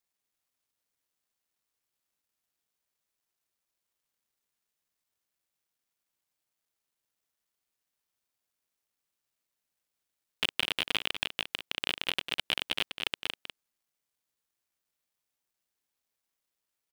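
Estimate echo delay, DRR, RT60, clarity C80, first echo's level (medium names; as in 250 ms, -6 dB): 198 ms, no reverb, no reverb, no reverb, -9.5 dB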